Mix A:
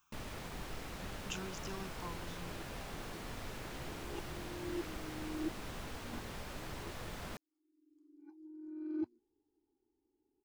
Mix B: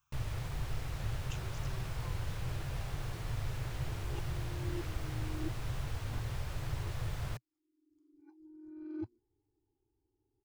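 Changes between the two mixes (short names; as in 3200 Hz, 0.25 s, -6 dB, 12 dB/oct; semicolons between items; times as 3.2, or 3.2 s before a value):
speech -6.5 dB; master: add resonant low shelf 160 Hz +9 dB, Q 3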